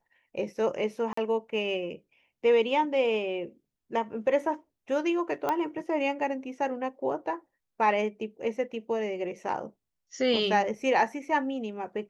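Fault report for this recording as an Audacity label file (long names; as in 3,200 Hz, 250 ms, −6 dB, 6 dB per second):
1.130000	1.170000	drop-out 44 ms
5.490000	5.490000	click −15 dBFS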